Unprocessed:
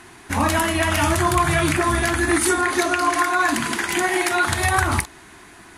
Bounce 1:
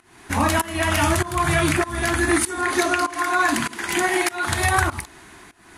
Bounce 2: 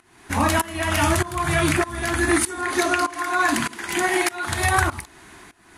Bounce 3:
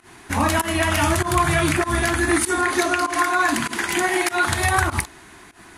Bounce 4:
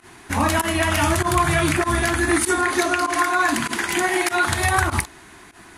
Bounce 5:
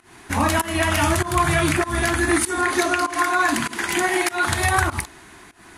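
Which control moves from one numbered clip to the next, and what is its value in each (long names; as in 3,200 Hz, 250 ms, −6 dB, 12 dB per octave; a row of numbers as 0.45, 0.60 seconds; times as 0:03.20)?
fake sidechain pumping, release: 356, 528, 130, 80, 210 milliseconds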